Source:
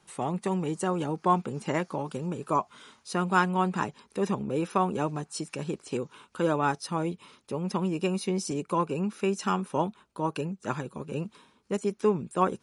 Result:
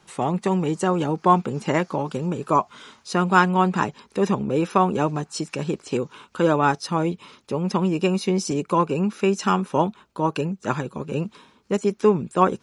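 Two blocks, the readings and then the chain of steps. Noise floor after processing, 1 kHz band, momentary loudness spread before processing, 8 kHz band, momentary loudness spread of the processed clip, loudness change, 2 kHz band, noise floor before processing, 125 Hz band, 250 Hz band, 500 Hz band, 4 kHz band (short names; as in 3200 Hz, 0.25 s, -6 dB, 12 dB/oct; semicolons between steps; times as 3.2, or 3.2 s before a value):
-60 dBFS, +7.0 dB, 9 LU, +4.5 dB, 9 LU, +7.0 dB, +7.0 dB, -66 dBFS, +7.0 dB, +7.0 dB, +7.0 dB, +7.0 dB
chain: bell 9400 Hz -11 dB 0.27 oct; gain +7 dB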